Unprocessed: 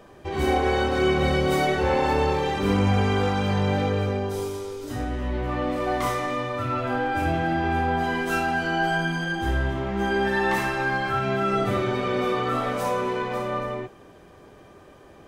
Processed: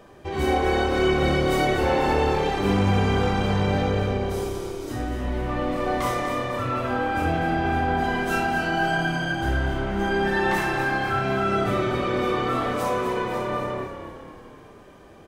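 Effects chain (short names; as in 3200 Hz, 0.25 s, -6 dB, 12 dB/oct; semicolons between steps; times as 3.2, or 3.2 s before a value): frequency-shifting echo 0.246 s, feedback 55%, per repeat -35 Hz, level -9 dB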